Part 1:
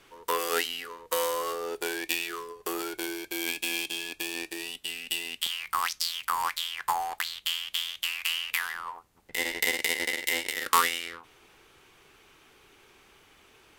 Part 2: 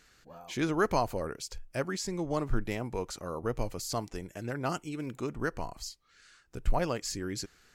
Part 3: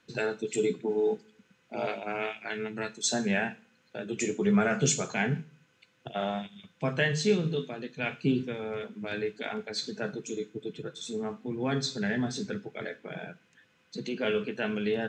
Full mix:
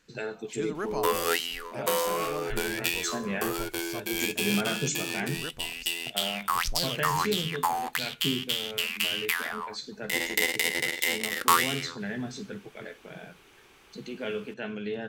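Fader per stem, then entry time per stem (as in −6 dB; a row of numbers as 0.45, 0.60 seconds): +1.0, −7.0, −4.5 decibels; 0.75, 0.00, 0.00 seconds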